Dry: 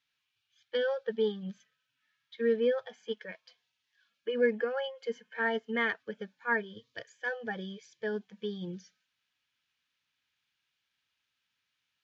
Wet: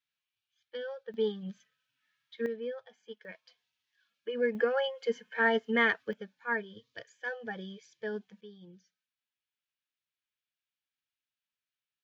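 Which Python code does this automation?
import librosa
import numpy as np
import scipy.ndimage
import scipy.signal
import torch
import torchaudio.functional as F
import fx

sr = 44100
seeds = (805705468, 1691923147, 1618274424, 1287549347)

y = fx.gain(x, sr, db=fx.steps((0.0, -9.0), (1.14, -1.0), (2.46, -10.0), (3.25, -3.0), (4.55, 4.0), (6.13, -2.5), (8.41, -14.0)))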